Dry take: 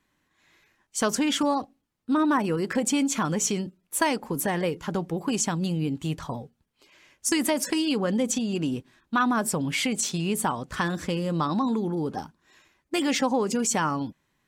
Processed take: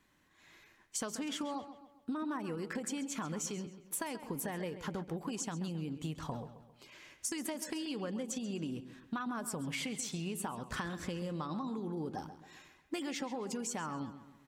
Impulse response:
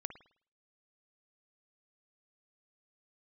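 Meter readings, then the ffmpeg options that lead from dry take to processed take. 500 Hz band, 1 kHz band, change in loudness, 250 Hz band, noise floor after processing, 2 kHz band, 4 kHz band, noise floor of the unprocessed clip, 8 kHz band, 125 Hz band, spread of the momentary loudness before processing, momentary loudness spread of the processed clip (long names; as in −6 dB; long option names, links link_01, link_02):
−13.5 dB, −14.5 dB, −13.0 dB, −13.0 dB, −66 dBFS, −13.5 dB, −13.0 dB, −74 dBFS, −12.0 dB, −11.5 dB, 8 LU, 8 LU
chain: -filter_complex "[0:a]acompressor=threshold=-37dB:ratio=12,asplit=2[link_01][link_02];[link_02]adelay=134,lowpass=frequency=4700:poles=1,volume=-12dB,asplit=2[link_03][link_04];[link_04]adelay=134,lowpass=frequency=4700:poles=1,volume=0.46,asplit=2[link_05][link_06];[link_06]adelay=134,lowpass=frequency=4700:poles=1,volume=0.46,asplit=2[link_07][link_08];[link_08]adelay=134,lowpass=frequency=4700:poles=1,volume=0.46,asplit=2[link_09][link_10];[link_10]adelay=134,lowpass=frequency=4700:poles=1,volume=0.46[link_11];[link_01][link_03][link_05][link_07][link_09][link_11]amix=inputs=6:normalize=0,volume=1dB"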